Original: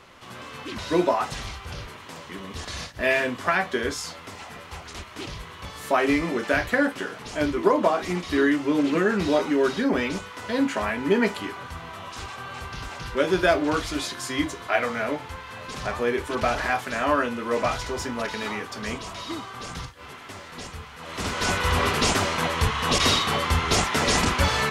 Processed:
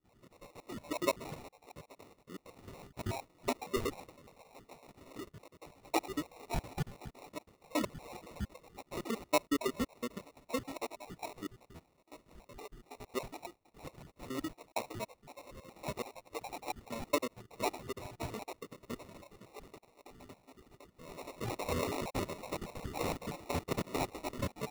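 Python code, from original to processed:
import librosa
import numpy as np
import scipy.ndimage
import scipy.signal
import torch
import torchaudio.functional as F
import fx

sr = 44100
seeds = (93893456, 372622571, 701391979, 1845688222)

y = fx.spec_dropout(x, sr, seeds[0], share_pct=81)
y = scipy.signal.sosfilt(scipy.signal.butter(2, 130.0, 'highpass', fs=sr, output='sos'), y)
y = fx.peak_eq(y, sr, hz=3100.0, db=-13.5, octaves=0.3)
y = fx.sample_hold(y, sr, seeds[1], rate_hz=1600.0, jitter_pct=0)
y = y * librosa.db_to_amplitude(-6.5)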